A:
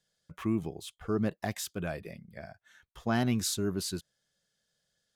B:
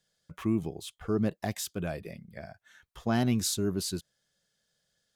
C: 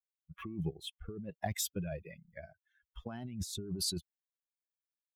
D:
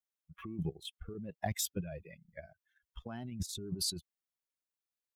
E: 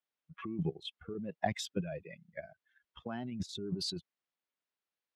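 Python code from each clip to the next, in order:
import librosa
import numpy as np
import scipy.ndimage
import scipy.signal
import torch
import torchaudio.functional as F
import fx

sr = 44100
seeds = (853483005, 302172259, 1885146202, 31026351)

y1 = fx.dynamic_eq(x, sr, hz=1500.0, q=0.81, threshold_db=-48.0, ratio=4.0, max_db=-4)
y1 = y1 * 10.0 ** (2.0 / 20.0)
y2 = fx.bin_expand(y1, sr, power=2.0)
y2 = fx.over_compress(y2, sr, threshold_db=-40.0, ratio=-1.0)
y2 = fx.rotary(y2, sr, hz=1.2)
y2 = y2 * 10.0 ** (2.5 / 20.0)
y3 = fx.level_steps(y2, sr, step_db=9)
y3 = y3 * 10.0 ** (2.5 / 20.0)
y4 = fx.bandpass_edges(y3, sr, low_hz=160.0, high_hz=3600.0)
y4 = y4 * 10.0 ** (4.5 / 20.0)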